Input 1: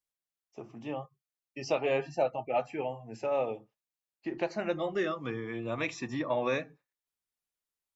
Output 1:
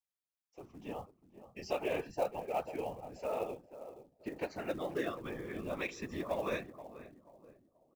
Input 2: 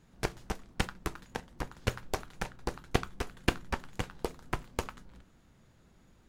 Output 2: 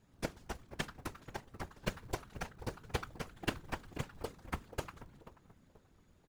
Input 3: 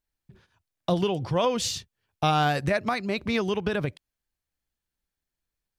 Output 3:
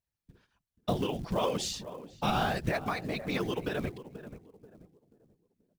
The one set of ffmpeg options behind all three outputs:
-filter_complex "[0:a]asplit=2[link_01][link_02];[link_02]adelay=484,lowpass=frequency=970:poles=1,volume=-12dB,asplit=2[link_03][link_04];[link_04]adelay=484,lowpass=frequency=970:poles=1,volume=0.37,asplit=2[link_05][link_06];[link_06]adelay=484,lowpass=frequency=970:poles=1,volume=0.37,asplit=2[link_07][link_08];[link_08]adelay=484,lowpass=frequency=970:poles=1,volume=0.37[link_09];[link_01][link_03][link_05][link_07][link_09]amix=inputs=5:normalize=0,afftfilt=real='hypot(re,im)*cos(2*PI*random(0))':imag='hypot(re,im)*sin(2*PI*random(1))':win_size=512:overlap=0.75,acrusher=bits=6:mode=log:mix=0:aa=0.000001"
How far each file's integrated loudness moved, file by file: −6.0, −6.0, −6.0 LU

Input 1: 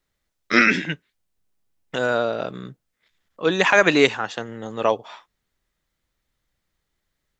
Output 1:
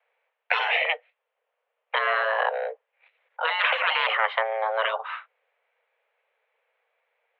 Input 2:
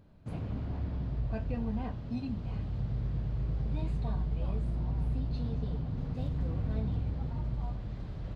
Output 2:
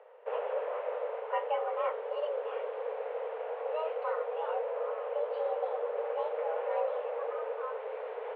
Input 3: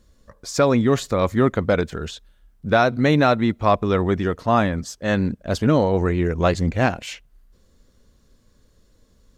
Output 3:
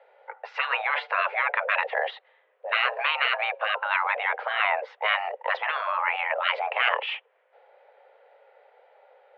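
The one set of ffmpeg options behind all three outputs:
-af "afftfilt=real='re*lt(hypot(re,im),0.2)':imag='im*lt(hypot(re,im),0.2)':win_size=1024:overlap=0.75,highpass=frequency=150:width_type=q:width=0.5412,highpass=frequency=150:width_type=q:width=1.307,lowpass=frequency=2600:width_type=q:width=0.5176,lowpass=frequency=2600:width_type=q:width=0.7071,lowpass=frequency=2600:width_type=q:width=1.932,afreqshift=320,volume=8dB"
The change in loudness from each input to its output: −4.5, +0.5, −5.5 LU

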